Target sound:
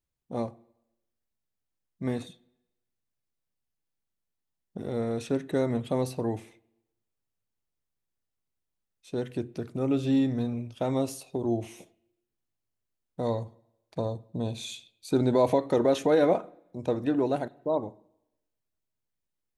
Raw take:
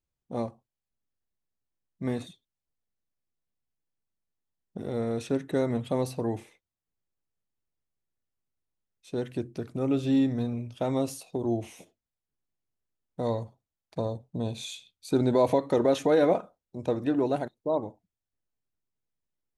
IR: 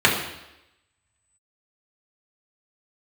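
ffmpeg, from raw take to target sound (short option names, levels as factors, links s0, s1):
-filter_complex "[0:a]asplit=2[s0][s1];[1:a]atrim=start_sample=2205,adelay=26[s2];[s1][s2]afir=irnorm=-1:irlink=0,volume=0.00841[s3];[s0][s3]amix=inputs=2:normalize=0"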